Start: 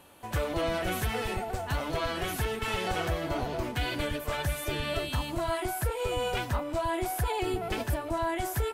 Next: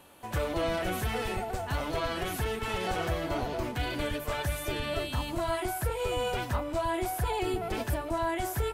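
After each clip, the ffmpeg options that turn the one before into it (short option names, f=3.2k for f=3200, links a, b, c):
-filter_complex "[0:a]bandreject=f=50:t=h:w=6,bandreject=f=100:t=h:w=6,bandreject=f=150:t=h:w=6,acrossover=split=1300[a][b];[b]alimiter=level_in=6.5dB:limit=-24dB:level=0:latency=1:release=12,volume=-6.5dB[c];[a][c]amix=inputs=2:normalize=0"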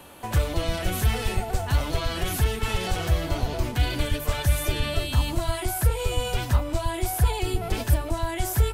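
-filter_complex "[0:a]lowshelf=f=110:g=5,acrossover=split=140|3000[a][b][c];[b]acompressor=threshold=-39dB:ratio=4[d];[a][d][c]amix=inputs=3:normalize=0,volume=8.5dB"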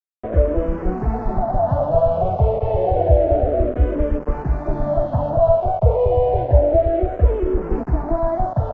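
-filter_complex "[0:a]aresample=16000,acrusher=bits=4:mix=0:aa=0.000001,aresample=44100,lowpass=f=630:t=q:w=4.9,asplit=2[a][b];[b]afreqshift=-0.29[c];[a][c]amix=inputs=2:normalize=1,volume=7.5dB"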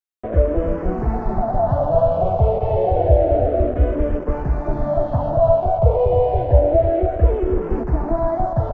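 -af "aecho=1:1:299:0.335"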